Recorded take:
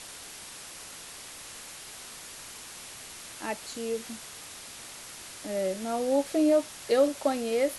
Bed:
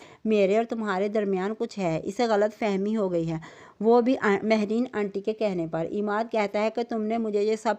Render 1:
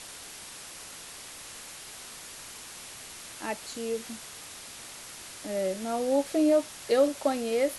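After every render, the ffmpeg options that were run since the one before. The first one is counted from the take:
-af anull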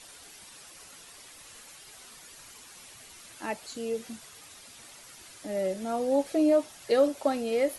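-af "afftdn=nr=9:nf=-45"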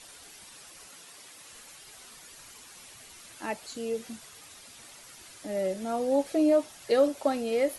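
-filter_complex "[0:a]asettb=1/sr,asplit=3[s0][s1][s2];[s0]atrim=end=0.854[s3];[s1]atrim=start=0.85:end=1.53,asetpts=PTS-STARTPTS,afade=t=in:d=0.004:c=qsin,afade=t=out:st=0.676:d=0.004:c=qsin,highpass=120[s4];[s2]atrim=start=1.526[s5];[s3][s4]acrossfade=d=0.004:c1=hsin:c2=qsin[s6];[s6][s5]acrossfade=d=0.004:c1=qsin:c2=hsin"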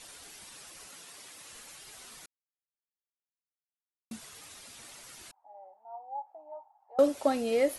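-filter_complex "[0:a]asettb=1/sr,asplit=3[s0][s1][s2];[s0]atrim=end=5.314[s3];[s1]atrim=start=5.31:end=6.99,asetpts=PTS-STARTPTS,afade=t=in:d=0.004:c=qsin,afade=t=out:st=1.676:d=0.004:c=qsin,asuperpass=centerf=830:order=4:qfactor=5.8[s4];[s2]atrim=start=6.986[s5];[s3][s4]acrossfade=d=0.004:c1=hsin:c2=qsin[s6];[s6][s5]acrossfade=d=0.004:c1=qsin:c2=hsin,asplit=3[s7][s8][s9];[s7]atrim=end=2.26,asetpts=PTS-STARTPTS,afade=t=out:st=2.256:d=0.004:c=hsin[s10];[s8]atrim=start=2.26:end=4.11,asetpts=PTS-STARTPTS,volume=0[s11];[s9]atrim=start=4.11,asetpts=PTS-STARTPTS,afade=t=in:d=0.004:c=hsin[s12];[s10][s11][s12]concat=n=3:v=0:a=1"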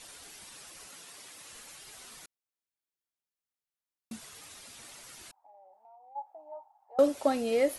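-filter_complex "[0:a]asplit=3[s0][s1][s2];[s0]afade=t=out:st=5.39:d=0.02[s3];[s1]acompressor=threshold=0.00224:ratio=6:attack=3.2:release=140:knee=1:detection=peak,afade=t=in:st=5.39:d=0.02,afade=t=out:st=6.15:d=0.02[s4];[s2]afade=t=in:st=6.15:d=0.02[s5];[s3][s4][s5]amix=inputs=3:normalize=0"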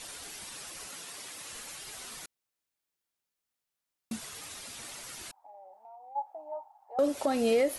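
-af "acontrast=38,alimiter=limit=0.126:level=0:latency=1:release=187"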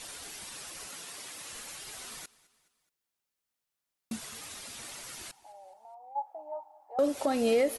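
-af "aecho=1:1:211|422|633:0.0794|0.0397|0.0199"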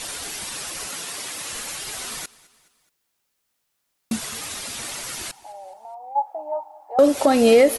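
-af "volume=3.98"

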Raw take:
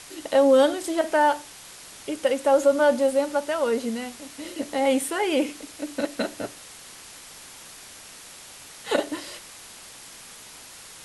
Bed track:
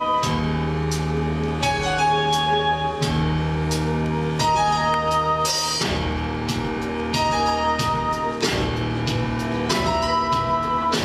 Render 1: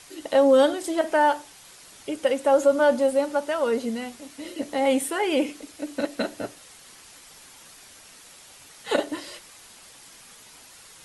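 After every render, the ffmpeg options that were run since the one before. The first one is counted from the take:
-af "afftdn=nr=6:nf=-45"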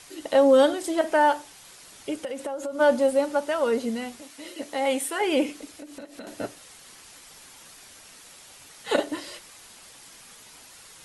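-filter_complex "[0:a]asplit=3[s0][s1][s2];[s0]afade=t=out:st=2.19:d=0.02[s3];[s1]acompressor=threshold=0.0398:ratio=10:attack=3.2:release=140:knee=1:detection=peak,afade=t=in:st=2.19:d=0.02,afade=t=out:st=2.79:d=0.02[s4];[s2]afade=t=in:st=2.79:d=0.02[s5];[s3][s4][s5]amix=inputs=3:normalize=0,asettb=1/sr,asplit=3[s6][s7][s8];[s6]atrim=end=4.224[s9];[s7]atrim=start=4.22:end=5.21,asetpts=PTS-STARTPTS,afade=t=in:d=0.004:c=qsin,afade=t=out:st=0.986:d=0.004:c=qsin,lowshelf=f=350:g=-10[s10];[s8]atrim=start=5.206[s11];[s9][s10]acrossfade=d=0.004:c1=hsin:c2=qsin[s12];[s12][s11]acrossfade=d=0.004:c1=qsin:c2=hsin,asettb=1/sr,asplit=3[s13][s14][s15];[s13]atrim=end=5.774[s16];[s14]atrim=start=5.77:end=6.27,asetpts=PTS-STARTPTS,afade=t=in:d=0.004:c=qsin,afade=t=out:st=0.496:d=0.004:c=qsin,acompressor=threshold=0.0126:ratio=5:attack=3.2:release=140:knee=1:detection=peak[s17];[s15]atrim=start=6.266[s18];[s16][s17]acrossfade=d=0.004:c1=hsin:c2=qsin[s19];[s19][s18]acrossfade=d=0.004:c1=qsin:c2=hsin"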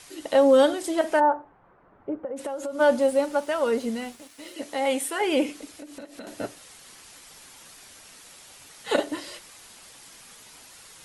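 -filter_complex "[0:a]asplit=3[s0][s1][s2];[s0]afade=t=out:st=1.19:d=0.02[s3];[s1]lowpass=f=1300:w=0.5412,lowpass=f=1300:w=1.3066,afade=t=in:st=1.19:d=0.02,afade=t=out:st=2.36:d=0.02[s4];[s2]afade=t=in:st=2.36:d=0.02[s5];[s3][s4][s5]amix=inputs=3:normalize=0,asettb=1/sr,asplit=3[s6][s7][s8];[s6]atrim=end=2.974[s9];[s7]atrim=start=2.97:end=4.54,asetpts=PTS-STARTPTS,afade=t=in:d=0.004:c=qsin,afade=t=out:st=1.566:d=0.004:c=qsin,aeval=exprs='sgn(val(0))*max(abs(val(0))-0.00211,0)':c=same[s10];[s8]atrim=start=4.536[s11];[s9][s10]acrossfade=d=0.004:c1=hsin:c2=qsin[s12];[s12][s11]acrossfade=d=0.004:c1=qsin:c2=hsin"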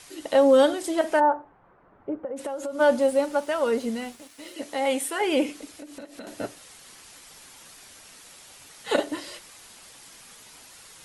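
-af anull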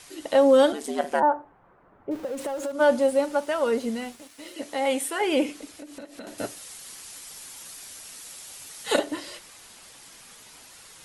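-filter_complex "[0:a]asettb=1/sr,asplit=3[s0][s1][s2];[s0]atrim=end=0.724[s3];[s1]atrim=start=0.72:end=1.23,asetpts=PTS-STARTPTS,afade=t=in:d=0.004:c=qsin,afade=t=out:st=0.506:d=0.004:c=qsin,aeval=exprs='val(0)*sin(2*PI*74*n/s)':c=same[s4];[s2]atrim=start=1.226[s5];[s3][s4]acrossfade=d=0.004:c1=hsin:c2=qsin[s6];[s6][s5]acrossfade=d=0.004:c1=qsin:c2=hsin,asettb=1/sr,asplit=3[s7][s8][s9];[s7]atrim=end=2.114[s10];[s8]atrim=start=2.11:end=2.72,asetpts=PTS-STARTPTS,afade=t=in:d=0.004:c=qsin,afade=t=out:st=0.606:d=0.004:c=qsin,aeval=exprs='val(0)+0.5*0.0119*sgn(val(0))':c=same[s11];[s9]atrim=start=2.716[s12];[s10][s11]acrossfade=d=0.004:c1=hsin:c2=qsin[s13];[s13][s12]acrossfade=d=0.004:c1=qsin:c2=hsin,asettb=1/sr,asplit=3[s14][s15][s16];[s14]atrim=end=6.384[s17];[s15]atrim=start=6.38:end=8.99,asetpts=PTS-STARTPTS,afade=t=in:d=0.004:c=qsin,afade=t=out:st=2.606:d=0.004:c=qsin,highshelf=f=4600:g=9.5[s18];[s16]atrim=start=8.986[s19];[s17][s18]acrossfade=d=0.004:c1=hsin:c2=qsin[s20];[s20][s19]acrossfade=d=0.004:c1=qsin:c2=hsin"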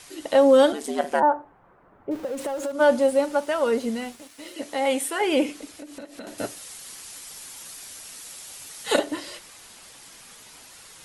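-af "volume=1.19"

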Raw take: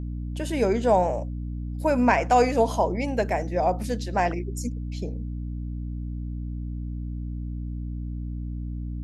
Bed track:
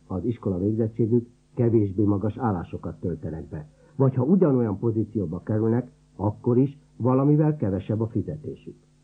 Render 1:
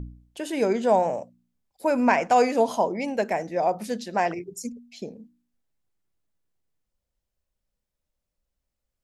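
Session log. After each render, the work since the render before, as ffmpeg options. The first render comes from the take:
-af "bandreject=f=60:t=h:w=4,bandreject=f=120:t=h:w=4,bandreject=f=180:t=h:w=4,bandreject=f=240:t=h:w=4,bandreject=f=300:t=h:w=4"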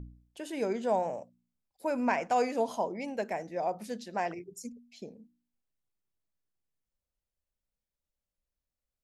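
-af "volume=0.376"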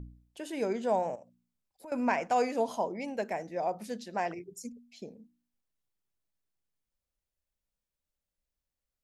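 -filter_complex "[0:a]asettb=1/sr,asplit=3[s0][s1][s2];[s0]atrim=end=1.154[s3];[s1]atrim=start=1.15:end=1.92,asetpts=PTS-STARTPTS,afade=t=in:d=0.004:c=qsin,afade=t=out:st=0.766:d=0.004:c=qsin,acompressor=threshold=0.00398:ratio=3:attack=3.2:release=140:knee=1:detection=peak[s4];[s2]atrim=start=1.916[s5];[s3][s4]acrossfade=d=0.004:c1=hsin:c2=qsin[s6];[s6][s5]acrossfade=d=0.004:c1=qsin:c2=hsin"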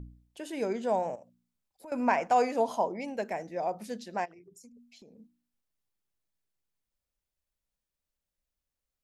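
-filter_complex "[0:a]asettb=1/sr,asplit=3[s0][s1][s2];[s0]atrim=end=2.004[s3];[s1]atrim=start=2:end=3.01,asetpts=PTS-STARTPTS,afade=t=in:d=0.004:c=qsin,afade=t=out:st=1.006:d=0.004:c=qsin,equalizer=f=870:w=0.98:g=4[s4];[s2]atrim=start=3.006[s5];[s3][s4]acrossfade=d=0.004:c1=hsin:c2=qsin[s6];[s6][s5]acrossfade=d=0.004:c1=qsin:c2=hsin,asplit=3[s7][s8][s9];[s7]afade=t=out:st=4.24:d=0.02[s10];[s8]acompressor=threshold=0.00282:ratio=6:attack=3.2:release=140:knee=1:detection=peak,afade=t=in:st=4.24:d=0.02,afade=t=out:st=5.18:d=0.02[s11];[s9]afade=t=in:st=5.18:d=0.02[s12];[s10][s11][s12]amix=inputs=3:normalize=0"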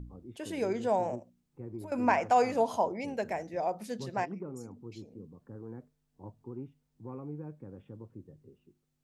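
-filter_complex "[1:a]volume=0.0794[s0];[0:a][s0]amix=inputs=2:normalize=0"

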